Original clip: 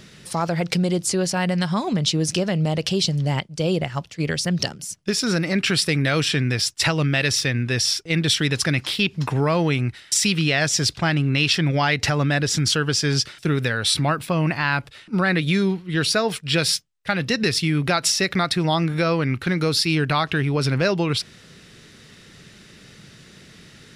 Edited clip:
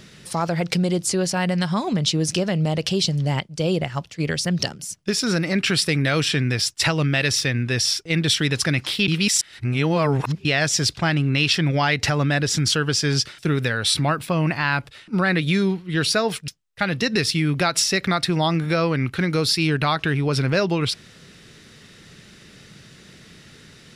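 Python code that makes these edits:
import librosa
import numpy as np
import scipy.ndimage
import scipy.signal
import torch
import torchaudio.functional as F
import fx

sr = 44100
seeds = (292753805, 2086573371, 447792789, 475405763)

y = fx.edit(x, sr, fx.reverse_span(start_s=9.08, length_s=1.37),
    fx.cut(start_s=16.48, length_s=0.28), tone=tone)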